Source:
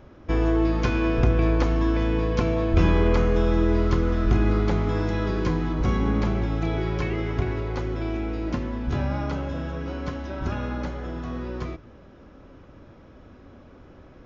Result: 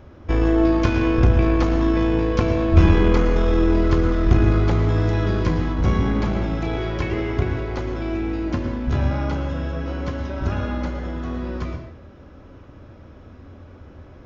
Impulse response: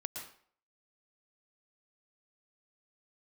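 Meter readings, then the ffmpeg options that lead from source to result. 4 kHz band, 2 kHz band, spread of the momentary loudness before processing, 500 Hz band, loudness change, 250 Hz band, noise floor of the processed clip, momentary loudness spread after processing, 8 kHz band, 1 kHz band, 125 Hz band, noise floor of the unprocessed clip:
+3.0 dB, +3.0 dB, 11 LU, +3.0 dB, +4.0 dB, +4.0 dB, -44 dBFS, 10 LU, n/a, +3.0 dB, +4.5 dB, -49 dBFS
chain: -filter_complex "[0:a]aeval=exprs='0.447*(cos(1*acos(clip(val(0)/0.447,-1,1)))-cos(1*PI/2))+0.0398*(cos(4*acos(clip(val(0)/0.447,-1,1)))-cos(4*PI/2))':c=same,asplit=2[a][b];[b]equalizer=f=81:w=2.2:g=11.5[c];[1:a]atrim=start_sample=2205[d];[c][d]afir=irnorm=-1:irlink=0,volume=3dB[e];[a][e]amix=inputs=2:normalize=0,volume=-4dB"

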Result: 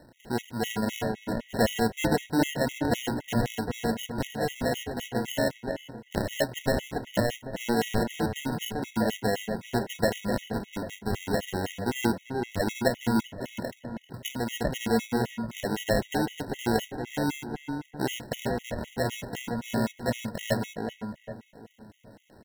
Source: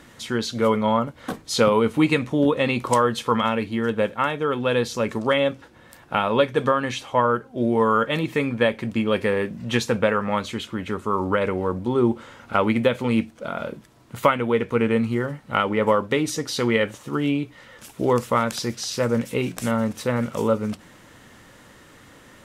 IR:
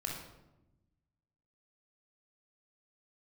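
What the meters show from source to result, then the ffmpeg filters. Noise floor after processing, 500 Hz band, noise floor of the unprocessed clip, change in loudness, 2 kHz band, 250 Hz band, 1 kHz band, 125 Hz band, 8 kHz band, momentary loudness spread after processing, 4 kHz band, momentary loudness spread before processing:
-58 dBFS, -8.0 dB, -50 dBFS, -7.5 dB, -6.5 dB, -5.5 dB, -9.0 dB, -4.5 dB, -3.0 dB, 9 LU, -5.0 dB, 7 LU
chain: -filter_complex "[0:a]equalizer=f=200:w=0.34:g=4.5,acrusher=samples=37:mix=1:aa=0.000001,asplit=2[a][b];[b]adelay=393,lowpass=f=1.8k:p=1,volume=-5dB,asplit=2[c][d];[d]adelay=393,lowpass=f=1.8k:p=1,volume=0.42,asplit=2[e][f];[f]adelay=393,lowpass=f=1.8k:p=1,volume=0.42,asplit=2[g][h];[h]adelay=393,lowpass=f=1.8k:p=1,volume=0.42,asplit=2[i][j];[j]adelay=393,lowpass=f=1.8k:p=1,volume=0.42[k];[a][c][e][g][i][k]amix=inputs=6:normalize=0,afftfilt=real='re*gt(sin(2*PI*3.9*pts/sr)*(1-2*mod(floor(b*sr/1024/1900),2)),0)':imag='im*gt(sin(2*PI*3.9*pts/sr)*(1-2*mod(floor(b*sr/1024/1900),2)),0)':win_size=1024:overlap=0.75,volume=-8dB"

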